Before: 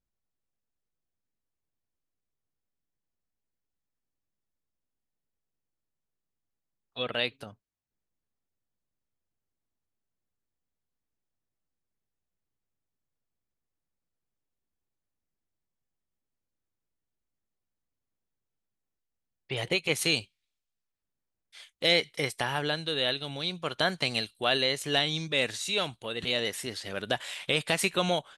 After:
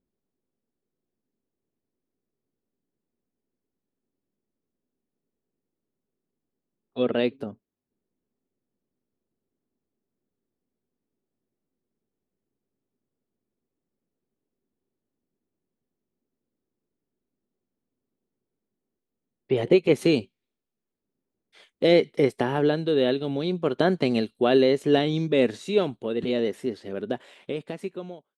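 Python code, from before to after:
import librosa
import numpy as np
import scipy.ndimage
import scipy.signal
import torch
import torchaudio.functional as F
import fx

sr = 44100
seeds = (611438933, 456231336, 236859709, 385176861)

y = fx.fade_out_tail(x, sr, length_s=2.85)
y = fx.high_shelf(y, sr, hz=3800.0, db=-10.0)
y = fx.small_body(y, sr, hz=(250.0, 370.0), ring_ms=25, db=17)
y = F.gain(torch.from_numpy(y), -2.0).numpy()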